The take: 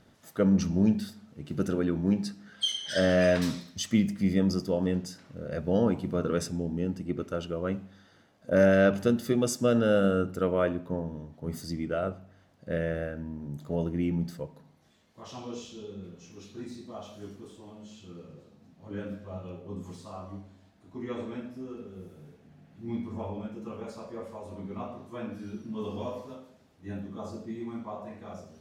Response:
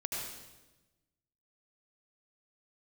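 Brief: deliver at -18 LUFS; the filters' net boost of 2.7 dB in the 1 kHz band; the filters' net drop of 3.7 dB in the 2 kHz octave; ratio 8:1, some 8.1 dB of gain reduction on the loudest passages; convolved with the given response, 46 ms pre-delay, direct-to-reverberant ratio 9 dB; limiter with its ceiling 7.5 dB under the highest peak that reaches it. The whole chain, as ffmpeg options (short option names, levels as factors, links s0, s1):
-filter_complex "[0:a]equalizer=f=1000:t=o:g=7,equalizer=f=2000:t=o:g=-9,acompressor=threshold=0.0562:ratio=8,alimiter=limit=0.0794:level=0:latency=1,asplit=2[s0][s1];[1:a]atrim=start_sample=2205,adelay=46[s2];[s1][s2]afir=irnorm=-1:irlink=0,volume=0.251[s3];[s0][s3]amix=inputs=2:normalize=0,volume=7.08"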